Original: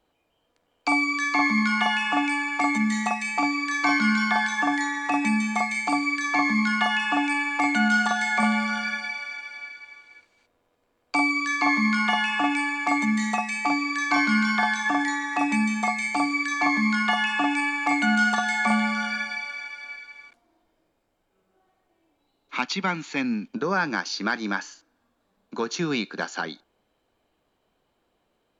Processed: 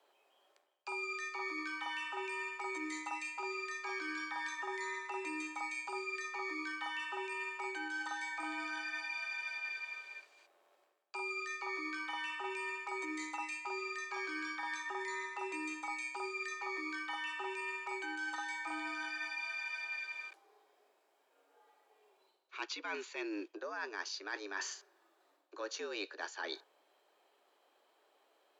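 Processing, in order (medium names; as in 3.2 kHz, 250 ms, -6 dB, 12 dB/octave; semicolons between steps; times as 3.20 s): frequency shift +94 Hz; high-pass 370 Hz 24 dB/octave; reverse; compression 12:1, threshold -39 dBFS, peak gain reduction 21.5 dB; reverse; band-stop 490 Hz, Q 16; trim +1 dB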